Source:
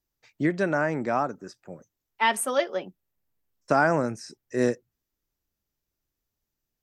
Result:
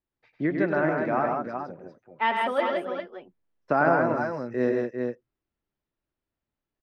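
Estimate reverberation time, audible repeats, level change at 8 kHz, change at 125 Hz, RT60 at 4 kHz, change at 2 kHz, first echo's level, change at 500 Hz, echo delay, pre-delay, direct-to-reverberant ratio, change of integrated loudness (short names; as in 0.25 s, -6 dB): none, 3, under -25 dB, -1.0 dB, none, 0.0 dB, -7.0 dB, +1.5 dB, 0.1 s, none, none, -0.5 dB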